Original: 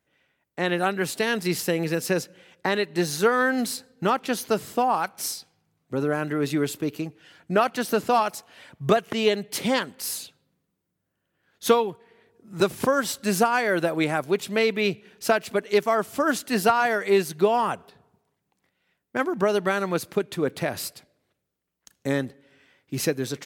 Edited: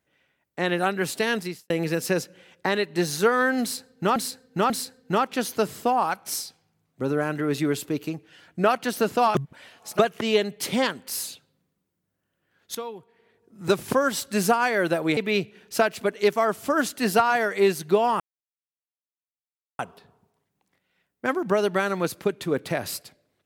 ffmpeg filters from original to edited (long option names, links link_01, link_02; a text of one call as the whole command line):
ffmpeg -i in.wav -filter_complex "[0:a]asplit=9[link_01][link_02][link_03][link_04][link_05][link_06][link_07][link_08][link_09];[link_01]atrim=end=1.7,asetpts=PTS-STARTPTS,afade=type=out:start_time=1.38:duration=0.32:curve=qua[link_10];[link_02]atrim=start=1.7:end=4.162,asetpts=PTS-STARTPTS,afade=type=in:duration=0.004:curve=hsin[link_11];[link_03]atrim=start=3.618:end=4.162[link_12];[link_04]atrim=start=3.618:end=8.272[link_13];[link_05]atrim=start=8.268:end=8.912,asetpts=PTS-STARTPTS,areverse[link_14];[link_06]atrim=start=8.908:end=11.67,asetpts=PTS-STARTPTS,afade=type=out:start_time=2.758:duration=0.004:curve=hsin:silence=0.11885[link_15];[link_07]atrim=start=11.67:end=14.092,asetpts=PTS-STARTPTS,afade=type=in:duration=0.98:silence=0.11885[link_16];[link_08]atrim=start=14.668:end=17.7,asetpts=PTS-STARTPTS,afade=type=out:start_time=3.028:duration=0.004:curve=hsin,apad=pad_dur=1.59[link_17];[link_09]atrim=start=17.7,asetpts=PTS-STARTPTS,afade=type=in:duration=0.004:curve=hsin[link_18];[link_10][link_11]concat=n=2:v=0:a=1[link_19];[link_19][link_12]acrossfade=duration=0.004:curve1=hsin:curve2=hsin[link_20];[link_20][link_13]acrossfade=duration=0.004:curve1=hsin:curve2=hsin[link_21];[link_21][link_14]acrossfade=duration=0.004:curve1=hsin:curve2=hsin[link_22];[link_15][link_16]concat=n=2:v=0:a=1[link_23];[link_22][link_23]acrossfade=duration=0.004:curve1=hsin:curve2=hsin[link_24];[link_17][link_18]concat=n=2:v=0:a=1[link_25];[link_24][link_25]acrossfade=duration=0.004:curve1=hsin:curve2=hsin" out.wav